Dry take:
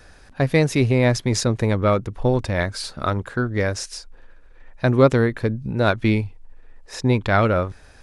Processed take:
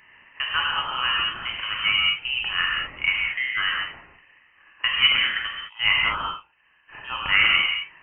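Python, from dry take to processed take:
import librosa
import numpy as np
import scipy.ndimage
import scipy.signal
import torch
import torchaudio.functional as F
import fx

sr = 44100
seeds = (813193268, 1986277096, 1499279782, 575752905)

p1 = scipy.signal.sosfilt(scipy.signal.butter(4, 650.0, 'highpass', fs=sr, output='sos'), x)
p2 = fx.rev_gated(p1, sr, seeds[0], gate_ms=230, shape='flat', drr_db=-3.0)
p3 = fx.rider(p2, sr, range_db=10, speed_s=2.0)
p4 = p2 + F.gain(torch.from_numpy(p3), 3.0).numpy()
p5 = fx.freq_invert(p4, sr, carrier_hz=3500)
y = F.gain(torch.from_numpy(p5), -8.5).numpy()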